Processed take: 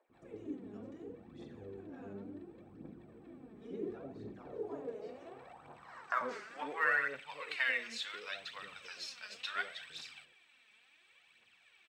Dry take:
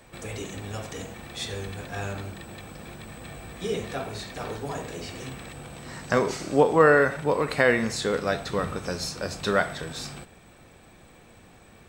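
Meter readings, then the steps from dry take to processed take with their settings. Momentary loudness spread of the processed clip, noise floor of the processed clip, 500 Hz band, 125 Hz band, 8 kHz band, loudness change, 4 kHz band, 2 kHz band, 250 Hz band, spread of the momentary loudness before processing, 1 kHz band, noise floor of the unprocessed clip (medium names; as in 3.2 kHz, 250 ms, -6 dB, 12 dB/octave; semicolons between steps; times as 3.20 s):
20 LU, -68 dBFS, -20.5 dB, -23.5 dB, -19.5 dB, -13.5 dB, -9.5 dB, -8.5 dB, -16.5 dB, 20 LU, -13.5 dB, -53 dBFS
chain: band-pass sweep 310 Hz -> 2.8 kHz, 4.24–7.26 s; bands offset in time highs, lows 90 ms, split 620 Hz; phaser 0.7 Hz, delay 4.9 ms, feedback 56%; trim -4 dB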